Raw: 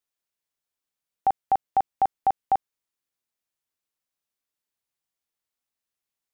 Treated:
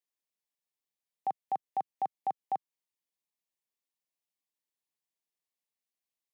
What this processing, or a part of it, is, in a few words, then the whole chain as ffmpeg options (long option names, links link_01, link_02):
PA system with an anti-feedback notch: -af "highpass=frequency=140:width=0.5412,highpass=frequency=140:width=1.3066,asuperstop=centerf=1400:order=4:qfactor=3.1,alimiter=limit=-18.5dB:level=0:latency=1:release=192,volume=-6dB"